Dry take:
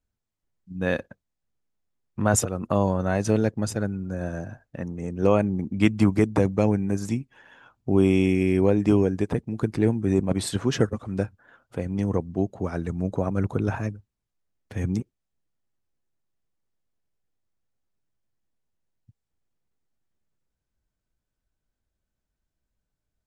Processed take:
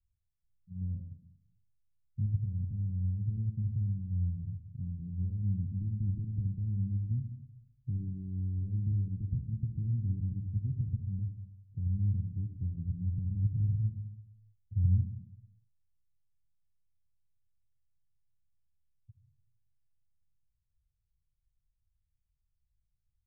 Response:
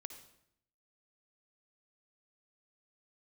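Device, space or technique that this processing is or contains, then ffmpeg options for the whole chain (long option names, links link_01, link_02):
club heard from the street: -filter_complex "[0:a]alimiter=limit=-17dB:level=0:latency=1,lowpass=frequency=130:width=0.5412,lowpass=frequency=130:width=1.3066[link_01];[1:a]atrim=start_sample=2205[link_02];[link_01][link_02]afir=irnorm=-1:irlink=0,volume=7dB"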